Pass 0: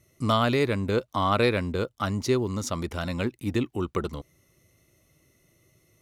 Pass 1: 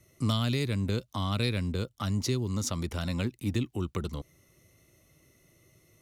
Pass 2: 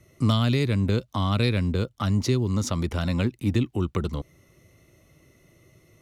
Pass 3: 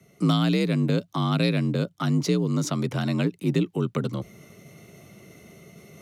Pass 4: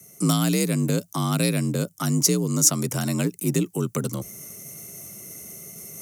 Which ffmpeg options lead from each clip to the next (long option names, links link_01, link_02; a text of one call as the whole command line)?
ffmpeg -i in.wav -filter_complex "[0:a]acrossover=split=220|3000[link_01][link_02][link_03];[link_02]acompressor=threshold=-37dB:ratio=6[link_04];[link_01][link_04][link_03]amix=inputs=3:normalize=0,volume=1dB" out.wav
ffmpeg -i in.wav -af "highshelf=frequency=4500:gain=-9,volume=6.5dB" out.wav
ffmpeg -i in.wav -af "areverse,acompressor=mode=upward:threshold=-38dB:ratio=2.5,areverse,afreqshift=50" out.wav
ffmpeg -i in.wav -af "aexciter=amount=9.7:drive=5.9:freq=5600" out.wav